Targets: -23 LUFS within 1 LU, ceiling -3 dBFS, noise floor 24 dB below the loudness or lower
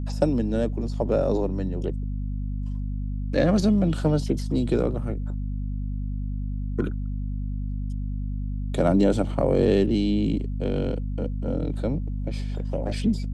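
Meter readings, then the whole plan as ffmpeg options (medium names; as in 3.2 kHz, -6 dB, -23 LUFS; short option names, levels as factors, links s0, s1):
hum 50 Hz; highest harmonic 250 Hz; hum level -26 dBFS; loudness -26.0 LUFS; peak level -7.5 dBFS; loudness target -23.0 LUFS
-> -af "bandreject=f=50:t=h:w=6,bandreject=f=100:t=h:w=6,bandreject=f=150:t=h:w=6,bandreject=f=200:t=h:w=6,bandreject=f=250:t=h:w=6"
-af "volume=1.41"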